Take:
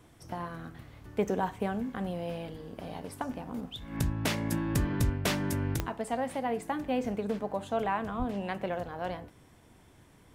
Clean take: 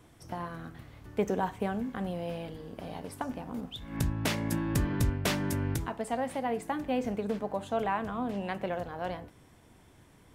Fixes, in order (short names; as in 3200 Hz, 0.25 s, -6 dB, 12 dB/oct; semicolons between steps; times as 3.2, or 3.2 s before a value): de-click; de-plosive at 8.18